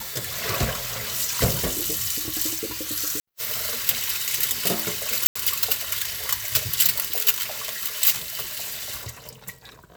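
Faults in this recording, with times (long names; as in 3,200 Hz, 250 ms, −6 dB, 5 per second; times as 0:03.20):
0:05.27–0:05.36: drop-out 85 ms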